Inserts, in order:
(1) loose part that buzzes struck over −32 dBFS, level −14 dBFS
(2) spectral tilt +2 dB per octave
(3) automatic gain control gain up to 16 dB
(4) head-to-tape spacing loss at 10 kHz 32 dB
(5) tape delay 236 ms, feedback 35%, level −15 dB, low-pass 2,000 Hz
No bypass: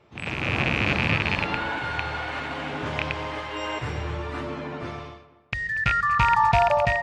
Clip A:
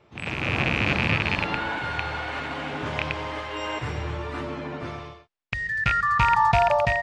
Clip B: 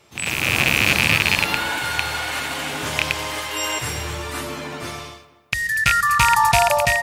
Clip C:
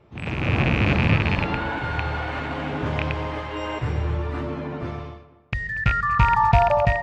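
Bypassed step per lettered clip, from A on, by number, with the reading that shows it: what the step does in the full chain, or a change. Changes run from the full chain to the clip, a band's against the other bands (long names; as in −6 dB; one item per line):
5, echo-to-direct ratio −19.5 dB to none audible
4, 8 kHz band +20.5 dB
2, 125 Hz band +6.5 dB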